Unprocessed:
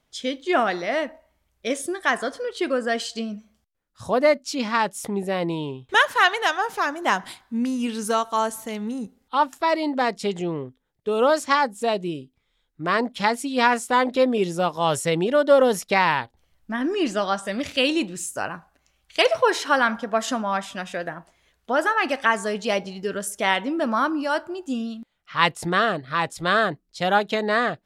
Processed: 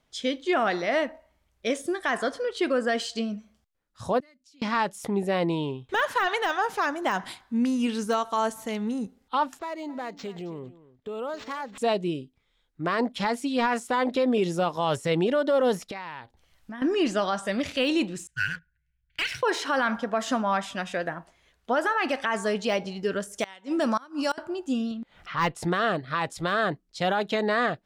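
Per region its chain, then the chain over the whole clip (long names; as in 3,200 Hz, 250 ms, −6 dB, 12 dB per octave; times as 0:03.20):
0:04.20–0:04.62: guitar amp tone stack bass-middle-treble 6-0-2 + downward compressor 10 to 1, threshold −53 dBFS
0:09.59–0:11.78: downward compressor 2.5 to 1, threshold −37 dBFS + single-tap delay 268 ms −17.5 dB + linearly interpolated sample-rate reduction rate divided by 4×
0:15.91–0:16.82: downward compressor 4 to 1, threshold −37 dBFS + one half of a high-frequency compander encoder only
0:18.27–0:19.43: low-pass that shuts in the quiet parts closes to 780 Hz, open at −19.5 dBFS + linear-phase brick-wall band-stop 170–1,400 Hz + leveller curve on the samples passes 2
0:23.38–0:24.38: parametric band 7,400 Hz +14 dB 1.5 octaves + gate with flip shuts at −11 dBFS, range −27 dB
0:24.91–0:25.56: high-shelf EQ 4,700 Hz −11 dB + upward compression, threshold −28 dBFS + tube saturation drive 13 dB, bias 0.3
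whole clip: de-essing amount 65%; high-shelf EQ 11,000 Hz −8 dB; brickwall limiter −15.5 dBFS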